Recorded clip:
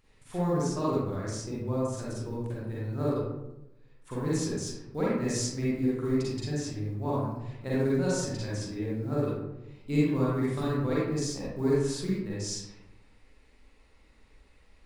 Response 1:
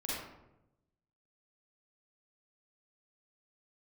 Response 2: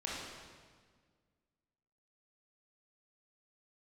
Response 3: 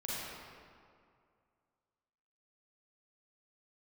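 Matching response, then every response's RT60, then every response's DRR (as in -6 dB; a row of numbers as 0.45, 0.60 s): 1; 0.90, 1.7, 2.3 s; -8.0, -6.0, -8.0 dB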